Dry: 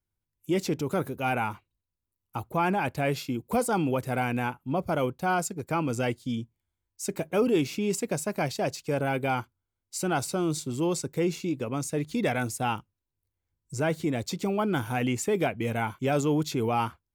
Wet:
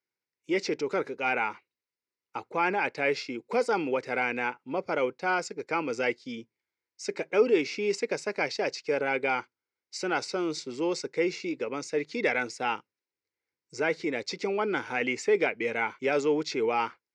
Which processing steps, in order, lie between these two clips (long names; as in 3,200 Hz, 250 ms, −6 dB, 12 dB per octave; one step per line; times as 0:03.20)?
loudspeaker in its box 420–5,500 Hz, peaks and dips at 440 Hz +5 dB, 680 Hz −8 dB, 1,100 Hz −5 dB, 2,100 Hz +7 dB, 3,300 Hz −7 dB, 5,200 Hz +4 dB
level +2.5 dB